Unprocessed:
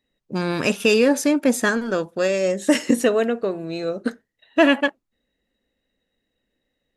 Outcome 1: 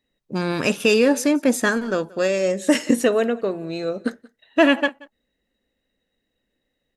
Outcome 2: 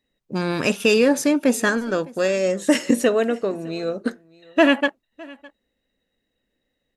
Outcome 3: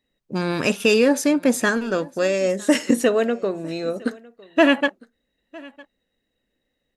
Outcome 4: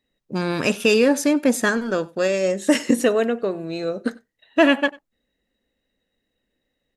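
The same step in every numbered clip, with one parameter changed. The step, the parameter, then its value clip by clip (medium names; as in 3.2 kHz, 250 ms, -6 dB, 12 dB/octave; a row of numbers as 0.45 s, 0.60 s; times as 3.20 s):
delay, time: 180 ms, 609 ms, 956 ms, 94 ms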